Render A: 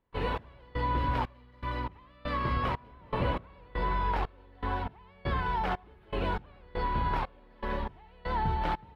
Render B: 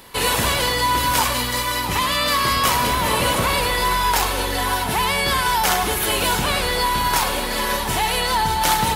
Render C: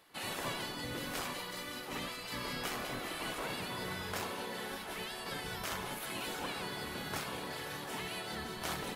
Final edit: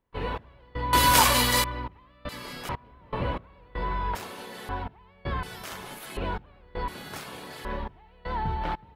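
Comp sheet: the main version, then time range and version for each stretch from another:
A
0.93–1.64 s: from B
2.29–2.69 s: from C
4.15–4.69 s: from C
5.43–6.17 s: from C
6.88–7.65 s: from C

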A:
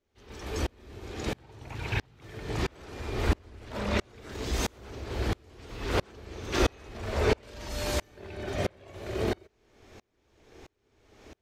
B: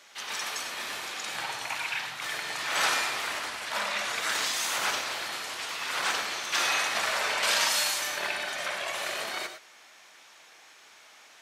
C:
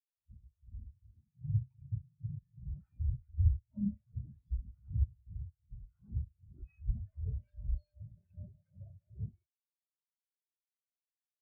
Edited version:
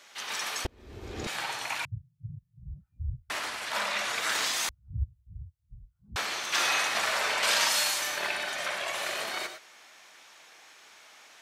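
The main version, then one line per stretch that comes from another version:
B
0.65–1.27 s: from A
1.85–3.30 s: from C
4.69–6.16 s: from C

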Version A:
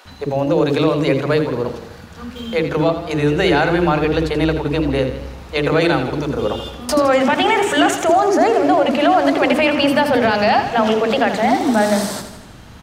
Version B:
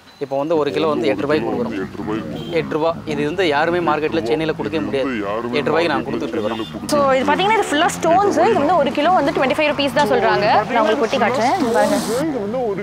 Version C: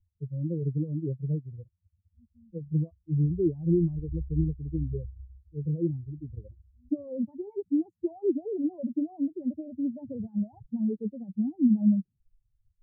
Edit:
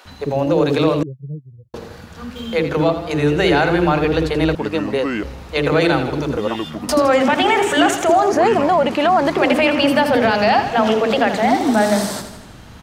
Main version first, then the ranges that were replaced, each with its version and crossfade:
A
1.03–1.74 s: from C
4.55–5.23 s: from B
6.37–6.88 s: from B
8.32–9.41 s: from B

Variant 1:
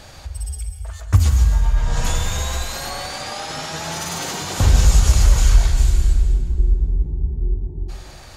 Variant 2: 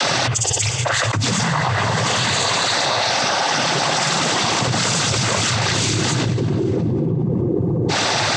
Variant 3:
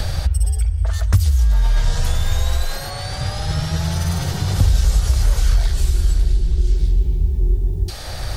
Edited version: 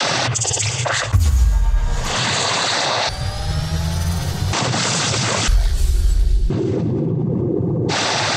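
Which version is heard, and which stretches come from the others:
2
1.09–2.06 s: from 1, crossfade 0.24 s
3.09–4.53 s: from 3
5.48–6.50 s: from 3

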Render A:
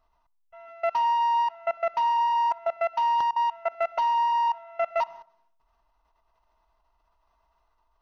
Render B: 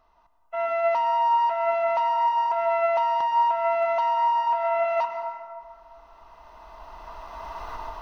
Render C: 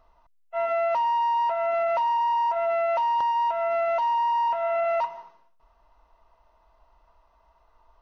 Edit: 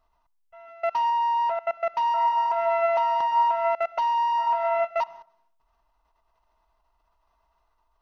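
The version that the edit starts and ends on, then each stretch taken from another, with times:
A
1.10–1.59 s: from C
2.14–3.75 s: from B
4.39–4.85 s: from B, crossfade 0.06 s

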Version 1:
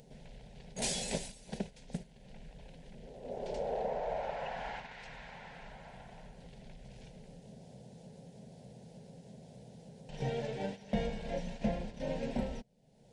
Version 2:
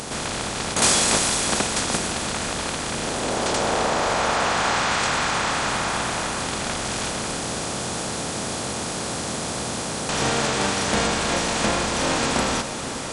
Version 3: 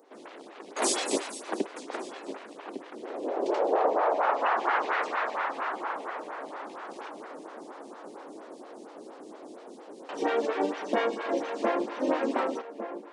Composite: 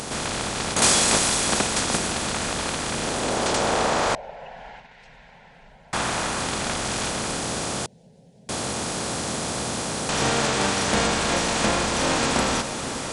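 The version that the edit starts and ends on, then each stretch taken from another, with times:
2
4.15–5.93 s: from 1
7.86–8.49 s: from 1
not used: 3

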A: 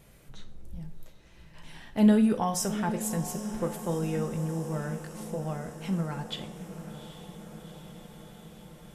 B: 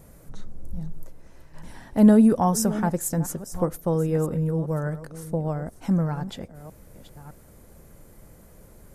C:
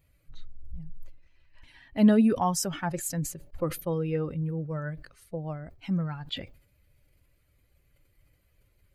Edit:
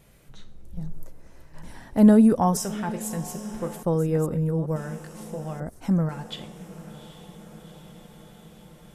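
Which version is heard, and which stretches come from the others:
A
0.77–2.57 s: from B
3.83–4.76 s: from B
5.60–6.09 s: from B
not used: C

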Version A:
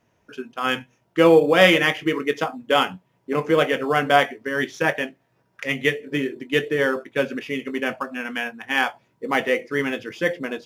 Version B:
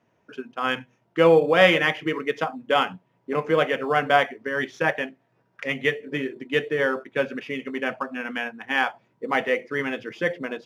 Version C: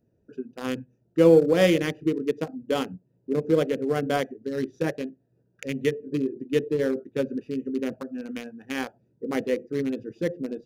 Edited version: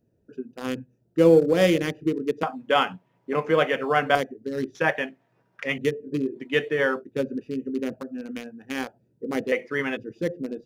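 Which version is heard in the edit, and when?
C
2.43–4.15 s: from B
4.75–5.78 s: from B
6.37–6.98 s: from B, crossfade 0.10 s
9.52–9.97 s: from B
not used: A

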